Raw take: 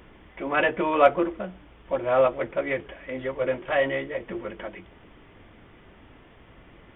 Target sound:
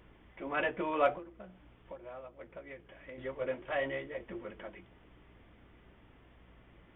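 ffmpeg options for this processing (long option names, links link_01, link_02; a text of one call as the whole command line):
ffmpeg -i in.wav -filter_complex "[0:a]asettb=1/sr,asplit=3[link_01][link_02][link_03];[link_01]atrim=end=1.174[link_04];[link_02]atrim=start=1.17:end=3.18,asetpts=PTS-STARTPTS,afade=type=in:duration=0.004:curve=qsin,afade=type=out:start_time=2.006:duration=0.004:curve=qsin,acompressor=threshold=-34dB:ratio=12[link_05];[link_03]atrim=start=3.176[link_06];[link_04][link_05]acrossfade=duration=0.004:curve1=hsin:curve2=qsin[link_07];[link_07][link_06]acrossfade=duration=0.004:curve1=qsin:curve2=hsin,flanger=delay=1.8:depth=4.8:regen=-82:speed=0.5:shape=triangular,aeval=exprs='val(0)+0.00141*(sin(2*PI*60*n/s)+sin(2*PI*2*60*n/s)/2+sin(2*PI*3*60*n/s)/3+sin(2*PI*4*60*n/s)/4+sin(2*PI*5*60*n/s)/5)':channel_layout=same,volume=-5.5dB" out.wav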